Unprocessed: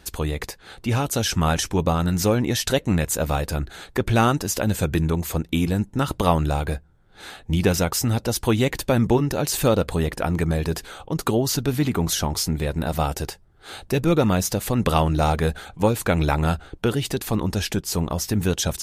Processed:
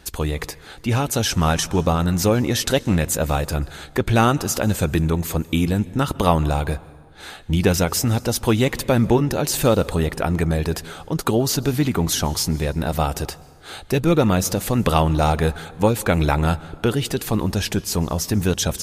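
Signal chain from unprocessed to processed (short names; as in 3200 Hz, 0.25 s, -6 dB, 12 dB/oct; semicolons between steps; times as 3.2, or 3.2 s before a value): plate-style reverb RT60 1.5 s, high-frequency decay 0.7×, pre-delay 0.12 s, DRR 19.5 dB; gain +2 dB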